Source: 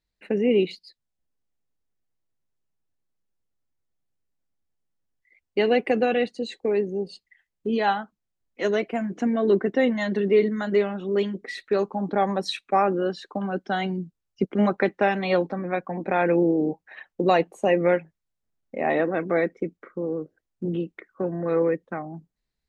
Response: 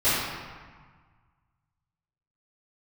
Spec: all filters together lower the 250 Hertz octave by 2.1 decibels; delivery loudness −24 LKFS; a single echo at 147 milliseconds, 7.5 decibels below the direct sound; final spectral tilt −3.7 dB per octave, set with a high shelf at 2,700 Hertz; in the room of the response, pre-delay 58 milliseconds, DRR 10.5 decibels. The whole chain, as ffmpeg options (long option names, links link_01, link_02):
-filter_complex "[0:a]equalizer=frequency=250:width_type=o:gain=-3,highshelf=frequency=2700:gain=5.5,aecho=1:1:147:0.422,asplit=2[link_01][link_02];[1:a]atrim=start_sample=2205,adelay=58[link_03];[link_02][link_03]afir=irnorm=-1:irlink=0,volume=-27.5dB[link_04];[link_01][link_04]amix=inputs=2:normalize=0,volume=0.5dB"